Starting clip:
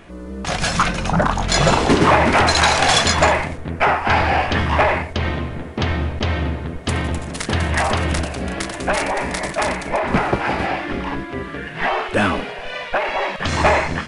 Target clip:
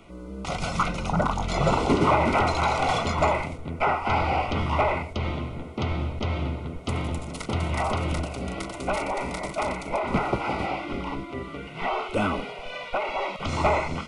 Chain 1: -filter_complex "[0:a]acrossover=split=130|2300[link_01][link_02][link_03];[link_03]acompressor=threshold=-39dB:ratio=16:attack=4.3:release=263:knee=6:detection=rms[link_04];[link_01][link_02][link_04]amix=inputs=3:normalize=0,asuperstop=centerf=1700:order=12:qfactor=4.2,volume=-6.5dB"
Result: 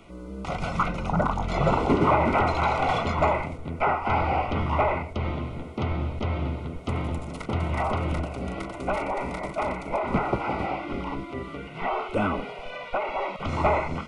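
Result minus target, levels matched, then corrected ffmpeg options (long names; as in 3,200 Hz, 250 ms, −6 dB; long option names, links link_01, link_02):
downward compressor: peak gain reduction +11 dB
-filter_complex "[0:a]acrossover=split=130|2300[link_01][link_02][link_03];[link_03]acompressor=threshold=-27.5dB:ratio=16:attack=4.3:release=263:knee=6:detection=rms[link_04];[link_01][link_02][link_04]amix=inputs=3:normalize=0,asuperstop=centerf=1700:order=12:qfactor=4.2,volume=-6.5dB"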